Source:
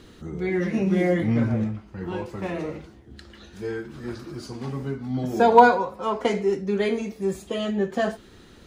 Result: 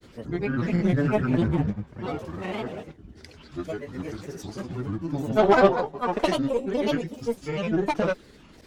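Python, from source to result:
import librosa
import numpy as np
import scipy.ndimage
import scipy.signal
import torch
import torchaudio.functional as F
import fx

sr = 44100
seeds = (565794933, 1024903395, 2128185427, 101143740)

y = fx.granulator(x, sr, seeds[0], grain_ms=100.0, per_s=20.0, spray_ms=100.0, spread_st=7)
y = fx.cheby_harmonics(y, sr, harmonics=(6,), levels_db=(-21,), full_scale_db=-5.0)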